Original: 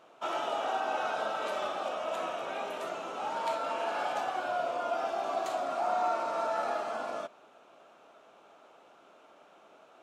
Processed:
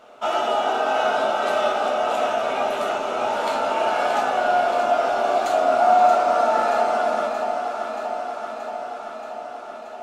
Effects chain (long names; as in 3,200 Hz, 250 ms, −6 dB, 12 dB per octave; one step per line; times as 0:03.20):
delay that swaps between a low-pass and a high-pass 314 ms, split 960 Hz, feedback 84%, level −5.5 dB
convolution reverb RT60 0.30 s, pre-delay 4 ms, DRR 2.5 dB
level +7.5 dB